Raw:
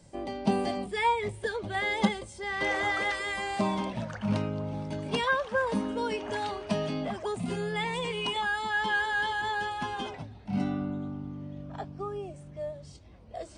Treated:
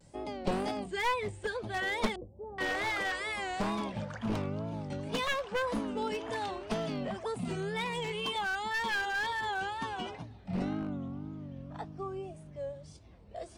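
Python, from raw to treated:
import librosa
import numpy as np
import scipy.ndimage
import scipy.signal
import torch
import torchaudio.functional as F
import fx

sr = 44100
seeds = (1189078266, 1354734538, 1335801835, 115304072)

y = np.minimum(x, 2.0 * 10.0 ** (-25.0 / 20.0) - x)
y = fx.cheby2_lowpass(y, sr, hz=1800.0, order=4, stop_db=50, at=(2.16, 2.59))
y = fx.wow_flutter(y, sr, seeds[0], rate_hz=2.1, depth_cents=130.0)
y = F.gain(torch.from_numpy(y), -3.0).numpy()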